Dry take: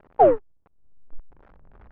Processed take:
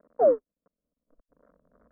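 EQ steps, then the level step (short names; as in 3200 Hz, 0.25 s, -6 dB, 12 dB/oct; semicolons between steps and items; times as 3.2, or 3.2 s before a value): band-pass 440 Hz, Q 0.78; air absorption 250 m; fixed phaser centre 550 Hz, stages 8; 0.0 dB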